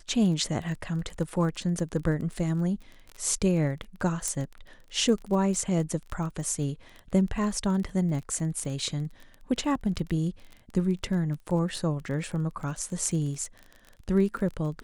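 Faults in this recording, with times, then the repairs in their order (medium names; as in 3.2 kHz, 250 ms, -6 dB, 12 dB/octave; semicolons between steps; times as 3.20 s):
crackle 28 per s -35 dBFS
4.28 s: pop -15 dBFS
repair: de-click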